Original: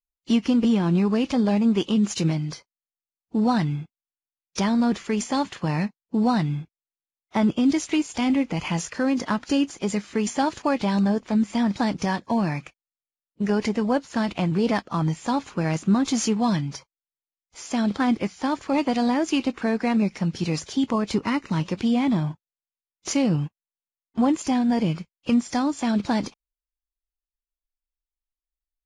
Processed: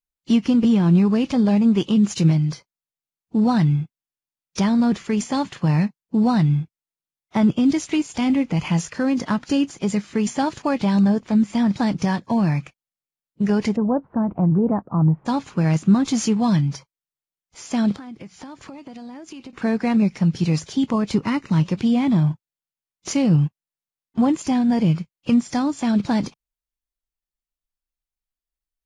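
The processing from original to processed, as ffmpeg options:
ffmpeg -i in.wav -filter_complex "[0:a]asplit=3[link_01][link_02][link_03];[link_01]afade=type=out:start_time=13.75:duration=0.02[link_04];[link_02]lowpass=frequency=1100:width=0.5412,lowpass=frequency=1100:width=1.3066,afade=type=in:start_time=13.75:duration=0.02,afade=type=out:start_time=15.25:duration=0.02[link_05];[link_03]afade=type=in:start_time=15.25:duration=0.02[link_06];[link_04][link_05][link_06]amix=inputs=3:normalize=0,asettb=1/sr,asplit=3[link_07][link_08][link_09];[link_07]atrim=end=17.924[link_10];[link_08]atrim=start=17.92:end=19.53,asetpts=PTS-STARTPTS,afade=type=in:duration=0.004:curve=qsin,afade=type=out:start_time=1.606:duration=0.004:curve=qsin,acompressor=threshold=-36dB:ratio=10:attack=3.2:release=140:knee=1:detection=peak[link_11];[link_09]atrim=start=19.526[link_12];[link_10][link_11]acrossfade=duration=0.004:curve1=hsin:curve2=qsin[link_13];[link_13][link_12]acrossfade=duration=0.004:curve1=qsin:curve2=hsin,equalizer=frequency=140:width=1.2:gain=8.5" out.wav

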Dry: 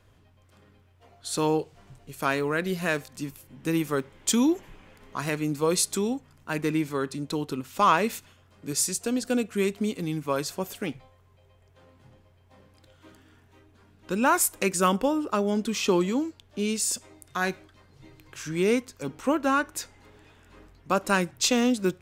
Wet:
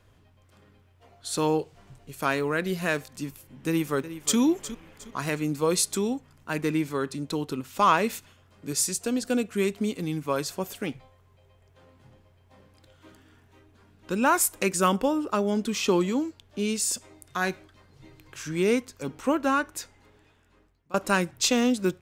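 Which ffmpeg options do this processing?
ffmpeg -i in.wav -filter_complex "[0:a]asplit=2[link_01][link_02];[link_02]afade=type=in:start_time=3.67:duration=0.01,afade=type=out:start_time=4.38:duration=0.01,aecho=0:1:360|720|1080:0.223872|0.0783552|0.0274243[link_03];[link_01][link_03]amix=inputs=2:normalize=0,asplit=2[link_04][link_05];[link_04]atrim=end=20.94,asetpts=PTS-STARTPTS,afade=type=out:start_time=19.45:duration=1.49:silence=0.0707946[link_06];[link_05]atrim=start=20.94,asetpts=PTS-STARTPTS,afade=type=in:duration=0.004:curve=hsin:silence=0.0707946[link_07];[link_06][link_07]concat=n=2:v=0:a=1" out.wav

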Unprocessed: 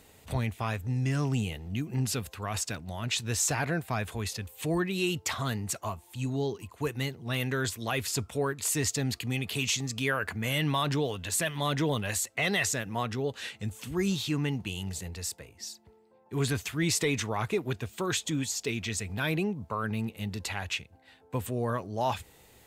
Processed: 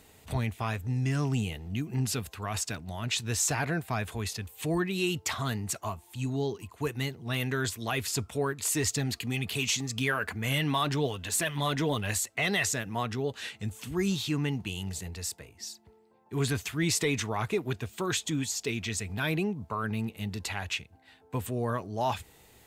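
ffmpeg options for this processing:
ffmpeg -i in.wav -filter_complex "[0:a]asplit=3[link_01][link_02][link_03];[link_01]afade=type=out:start_time=8.74:duration=0.02[link_04];[link_02]aphaser=in_gain=1:out_gain=1:delay=4.9:decay=0.31:speed=1.9:type=triangular,afade=type=in:start_time=8.74:duration=0.02,afade=type=out:start_time=12.17:duration=0.02[link_05];[link_03]afade=type=in:start_time=12.17:duration=0.02[link_06];[link_04][link_05][link_06]amix=inputs=3:normalize=0,bandreject=frequency=530:width=12" out.wav

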